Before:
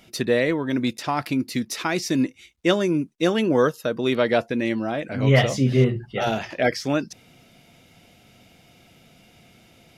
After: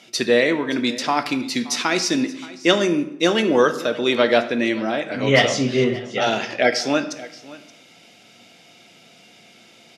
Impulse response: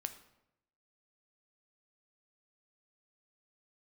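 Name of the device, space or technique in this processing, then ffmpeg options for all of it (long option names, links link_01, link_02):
supermarket ceiling speaker: -filter_complex "[0:a]asettb=1/sr,asplit=3[link_01][link_02][link_03];[link_01]atrim=end=5.494[link_04];[link_02]atrim=start=5.49:end=6.31,asetpts=PTS-STARTPTS,afade=type=in:duration=0.004:curve=qsin,afade=type=out:start_time=0.816:duration=0.004:curve=qsin,lowpass=8500[link_05];[link_03]atrim=start=6.306[link_06];[link_04][link_05]acrossfade=duration=0.004:curve1=hsin:curve2=qsin[link_07];[link_07][link_06]acrossfade=duration=0.004:curve1=qsin:curve2=hsin,highpass=230,lowpass=5800[link_08];[1:a]atrim=start_sample=2205[link_09];[link_08][link_09]afir=irnorm=-1:irlink=0,highshelf=frequency=4000:gain=11.5,aecho=1:1:575:0.106,volume=5dB"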